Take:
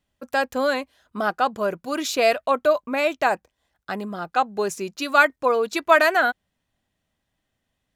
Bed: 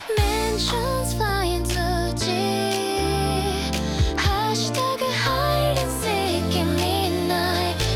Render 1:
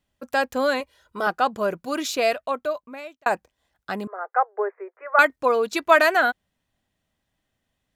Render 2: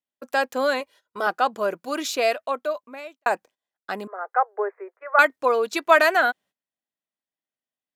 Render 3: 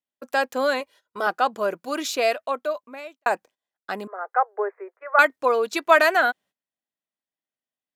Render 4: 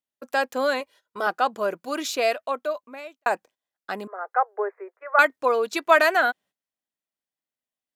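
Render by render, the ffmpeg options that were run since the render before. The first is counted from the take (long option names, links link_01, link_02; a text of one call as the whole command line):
ffmpeg -i in.wav -filter_complex "[0:a]asettb=1/sr,asplit=3[link_01][link_02][link_03];[link_01]atrim=end=0.804[link_04];[link_02]atrim=start=0.8:end=1.27,asetpts=PTS-STARTPTS,afade=type=in:duration=0.004:curve=qsin,afade=type=out:start_time=0.466:duration=0.004:curve=qsin,aecho=1:1:2.1:0.65,atrim=end_sample=20727[link_05];[link_03]atrim=start=1.266[link_06];[link_04][link_05]acrossfade=duration=0.004:curve1=hsin:curve2=qsin[link_07];[link_07][link_06]acrossfade=duration=0.004:curve1=qsin:curve2=hsin,asettb=1/sr,asplit=3[link_08][link_09][link_10];[link_08]atrim=end=4.074[link_11];[link_09]atrim=start=4.07:end=5.19,asetpts=PTS-STARTPTS,afade=type=in:duration=0.004:curve=qsin,afade=type=out:start_time=1.116:duration=0.004:curve=qsin,asuperpass=centerf=910:order=20:qfactor=0.54[link_12];[link_10]atrim=start=5.186[link_13];[link_11][link_12]acrossfade=duration=0.004:curve1=hsin:curve2=qsin[link_14];[link_14][link_13]acrossfade=duration=0.004:curve1=qsin:curve2=hsin,asplit=2[link_15][link_16];[link_15]atrim=end=3.26,asetpts=PTS-STARTPTS,afade=type=out:start_time=1.89:duration=1.37[link_17];[link_16]atrim=start=3.26,asetpts=PTS-STARTPTS,afade=type=in:duration=0.004:curve=hsin[link_18];[link_17][link_18]concat=n=2:v=0:a=1" out.wav
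ffmpeg -i in.wav -af "highpass=270,agate=range=-18dB:threshold=-48dB:ratio=16:detection=peak" out.wav
ffmpeg -i in.wav -af anull out.wav
ffmpeg -i in.wav -af "volume=-1dB" out.wav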